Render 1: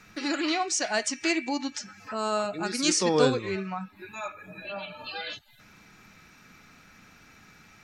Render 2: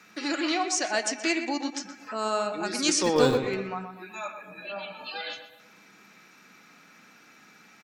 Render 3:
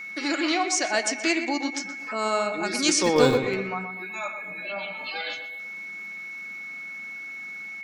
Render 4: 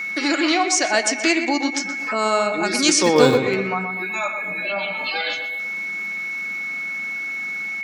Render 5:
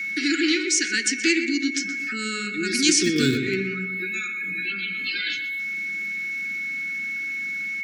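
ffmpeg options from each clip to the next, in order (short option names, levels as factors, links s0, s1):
-filter_complex "[0:a]acrossover=split=170|2700[s0][s1][s2];[s0]acrusher=bits=5:mix=0:aa=0.000001[s3];[s3][s1][s2]amix=inputs=3:normalize=0,asplit=2[s4][s5];[s5]adelay=124,lowpass=f=2200:p=1,volume=0.398,asplit=2[s6][s7];[s7]adelay=124,lowpass=f=2200:p=1,volume=0.46,asplit=2[s8][s9];[s9]adelay=124,lowpass=f=2200:p=1,volume=0.46,asplit=2[s10][s11];[s11]adelay=124,lowpass=f=2200:p=1,volume=0.46,asplit=2[s12][s13];[s13]adelay=124,lowpass=f=2200:p=1,volume=0.46[s14];[s4][s6][s8][s10][s12][s14]amix=inputs=6:normalize=0"
-af "aeval=exprs='val(0)+0.0141*sin(2*PI*2200*n/s)':c=same,volume=1.33"
-filter_complex "[0:a]highpass=94,asplit=2[s0][s1];[s1]acompressor=threshold=0.02:ratio=6,volume=1.12[s2];[s0][s2]amix=inputs=2:normalize=0,volume=1.5"
-af "asuperstop=centerf=760:order=12:qfactor=0.71,volume=0.841"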